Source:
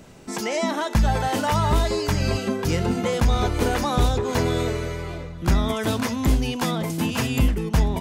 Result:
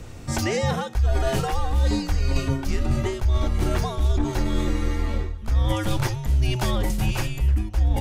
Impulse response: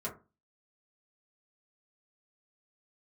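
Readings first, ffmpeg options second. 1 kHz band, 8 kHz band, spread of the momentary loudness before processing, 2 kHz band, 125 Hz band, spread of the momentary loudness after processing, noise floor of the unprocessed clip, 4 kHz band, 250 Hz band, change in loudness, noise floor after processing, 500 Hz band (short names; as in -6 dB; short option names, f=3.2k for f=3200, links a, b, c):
-5.5 dB, -3.0 dB, 5 LU, -3.5 dB, +1.0 dB, 3 LU, -35 dBFS, -3.5 dB, -4.0 dB, -1.5 dB, -36 dBFS, -4.0 dB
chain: -af "lowshelf=f=160:g=11,areverse,acompressor=threshold=-22dB:ratio=6,areverse,afreqshift=-120,volume=3.5dB"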